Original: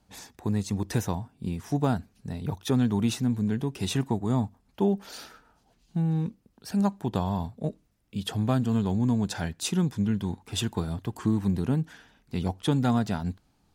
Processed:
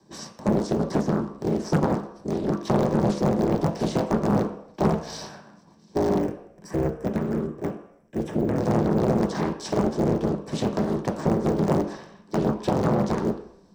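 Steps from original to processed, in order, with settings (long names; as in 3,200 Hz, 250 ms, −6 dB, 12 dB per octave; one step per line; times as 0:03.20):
sub-harmonics by changed cycles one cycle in 3, inverted
de-essing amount 100%
parametric band 65 Hz −10.5 dB 2 octaves
downward compressor, threshold −29 dBFS, peak gain reduction 8 dB
0:06.19–0:08.58: phaser with its sweep stopped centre 1,800 Hz, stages 4
ring modulation 410 Hz
frequency shifter −220 Hz
convolution reverb RT60 0.75 s, pre-delay 3 ms, DRR 1.5 dB
highs frequency-modulated by the lows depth 0.88 ms
level +1.5 dB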